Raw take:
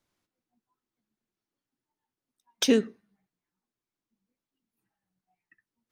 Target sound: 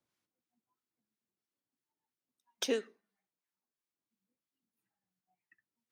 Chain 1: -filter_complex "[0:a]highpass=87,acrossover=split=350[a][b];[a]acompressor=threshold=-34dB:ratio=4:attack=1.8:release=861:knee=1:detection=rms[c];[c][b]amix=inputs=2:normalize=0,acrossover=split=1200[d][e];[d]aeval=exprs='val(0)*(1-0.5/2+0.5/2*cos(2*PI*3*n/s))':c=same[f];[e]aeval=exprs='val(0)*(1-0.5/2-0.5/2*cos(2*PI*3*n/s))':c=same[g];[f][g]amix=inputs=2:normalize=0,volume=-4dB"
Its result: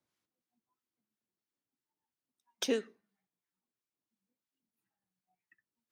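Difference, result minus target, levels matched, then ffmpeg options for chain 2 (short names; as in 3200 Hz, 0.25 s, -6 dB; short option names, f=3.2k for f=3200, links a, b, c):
compressor: peak gain reduction -8.5 dB
-filter_complex "[0:a]highpass=87,acrossover=split=350[a][b];[a]acompressor=threshold=-45.5dB:ratio=4:attack=1.8:release=861:knee=1:detection=rms[c];[c][b]amix=inputs=2:normalize=0,acrossover=split=1200[d][e];[d]aeval=exprs='val(0)*(1-0.5/2+0.5/2*cos(2*PI*3*n/s))':c=same[f];[e]aeval=exprs='val(0)*(1-0.5/2-0.5/2*cos(2*PI*3*n/s))':c=same[g];[f][g]amix=inputs=2:normalize=0,volume=-4dB"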